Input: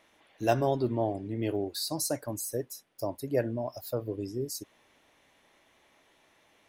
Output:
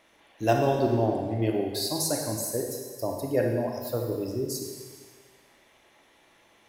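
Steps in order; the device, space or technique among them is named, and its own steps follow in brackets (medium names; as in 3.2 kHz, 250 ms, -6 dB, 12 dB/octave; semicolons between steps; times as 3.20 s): stairwell (reverberation RT60 1.7 s, pre-delay 28 ms, DRR 1.5 dB); trim +2 dB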